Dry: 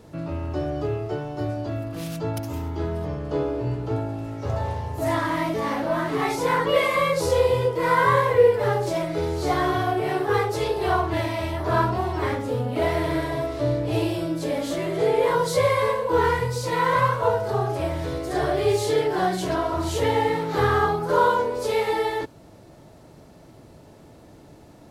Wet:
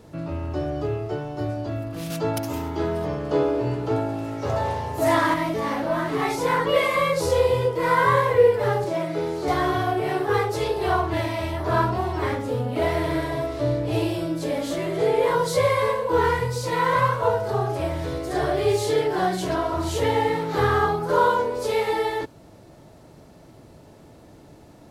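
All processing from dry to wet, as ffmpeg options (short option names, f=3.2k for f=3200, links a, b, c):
-filter_complex "[0:a]asettb=1/sr,asplit=3[a][b][c];[a]atrim=end=2.104[d];[b]atrim=start=2.1:end=5.34,asetpts=PTS-STARTPTS,afade=t=in:d=0.004:c=qsin,afade=t=out:st=3.236:d=0.004:c=qsin,highpass=f=220:p=1,acontrast=34[e];[c]atrim=start=5.336[f];[d][e]acrossfade=d=0.004:c1=hsin:c2=qsin[g];[g][f]acrossfade=d=0.004:c1=qsin:c2=hsin,asettb=1/sr,asplit=3[h][i][j];[h]atrim=end=8.844[k];[i]atrim=start=8.84:end=9.48,asetpts=PTS-STARTPTS,afade=t=in:d=0.004:c=qsin,afade=t=out:st=0.636:d=0.004:c=qsin,acrossover=split=3000[l][m];[m]acompressor=threshold=-46dB:ratio=4:attack=1:release=60[n];[l][n]amix=inputs=2:normalize=0,highpass=f=130:w=0.5412,highpass=f=130:w=1.3066[o];[j]atrim=start=9.476[p];[k][o]acrossfade=d=0.004:c1=hsin:c2=qsin[q];[q][p]acrossfade=d=0.004:c1=qsin:c2=hsin"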